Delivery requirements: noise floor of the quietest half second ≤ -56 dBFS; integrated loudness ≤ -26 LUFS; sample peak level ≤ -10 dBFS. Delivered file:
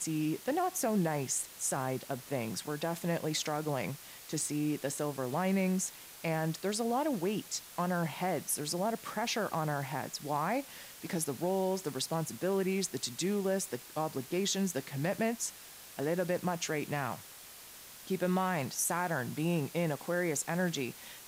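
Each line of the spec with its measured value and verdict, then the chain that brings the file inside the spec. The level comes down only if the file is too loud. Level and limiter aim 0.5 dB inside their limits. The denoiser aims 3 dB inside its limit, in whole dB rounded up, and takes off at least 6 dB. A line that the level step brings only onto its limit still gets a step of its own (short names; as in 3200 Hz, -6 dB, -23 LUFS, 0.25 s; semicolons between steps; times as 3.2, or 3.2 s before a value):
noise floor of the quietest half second -51 dBFS: fail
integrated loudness -34.0 LUFS: OK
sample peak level -18.5 dBFS: OK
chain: denoiser 8 dB, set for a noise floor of -51 dBFS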